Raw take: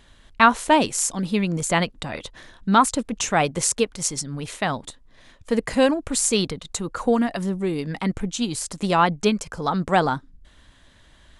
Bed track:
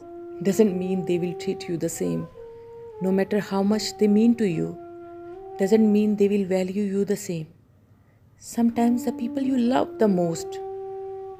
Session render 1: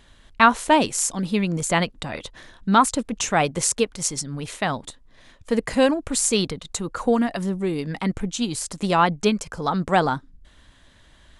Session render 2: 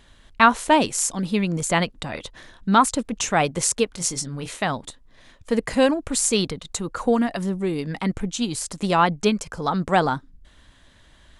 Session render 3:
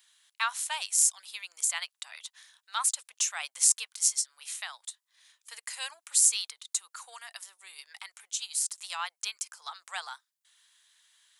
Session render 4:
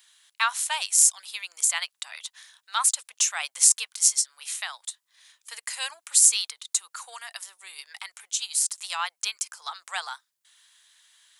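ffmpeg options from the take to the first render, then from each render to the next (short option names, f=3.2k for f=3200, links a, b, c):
-af anull
-filter_complex "[0:a]asettb=1/sr,asplit=3[a][b][c];[a]atrim=end=3.914[d];[b]atrim=start=3.91:end=4.62,asetpts=PTS-STARTPTS,afade=t=in:d=0.004:c=qsin,afade=t=out:st=0.706:d=0.004:c=qsin,asplit=2[e][f];[f]adelay=23,volume=-8.5dB[g];[e][g]amix=inputs=2:normalize=0,atrim=end_sample=31311[h];[c]atrim=start=4.616[i];[d][h]acrossfade=d=0.004:c1=hsin:c2=qsin[j];[j][i]acrossfade=d=0.004:c1=qsin:c2=hsin"
-af "highpass=f=830:w=0.5412,highpass=f=830:w=1.3066,aderivative"
-af "volume=5.5dB,alimiter=limit=-1dB:level=0:latency=1"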